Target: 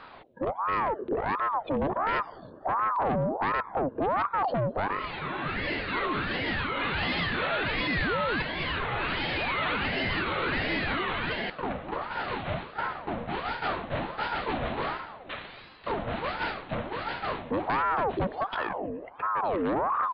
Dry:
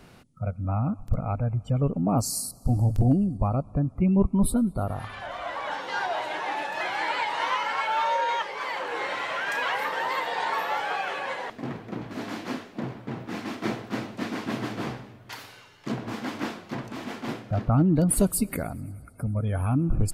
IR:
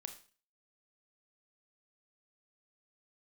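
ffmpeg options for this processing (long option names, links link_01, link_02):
-af "aresample=8000,asoftclip=type=tanh:threshold=-28.5dB,aresample=44100,aeval=exprs='val(0)*sin(2*PI*770*n/s+770*0.55/1.4*sin(2*PI*1.4*n/s))':channel_layout=same,volume=6.5dB"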